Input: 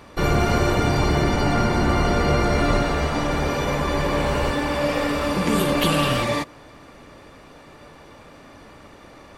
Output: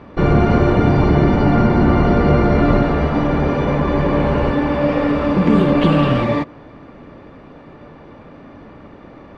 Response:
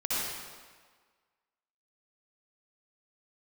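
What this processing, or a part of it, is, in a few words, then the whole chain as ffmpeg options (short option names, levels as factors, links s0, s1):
phone in a pocket: -af "lowpass=3500,equalizer=f=210:t=o:w=2:g=6,highshelf=f=2400:g=-8.5,volume=1.5"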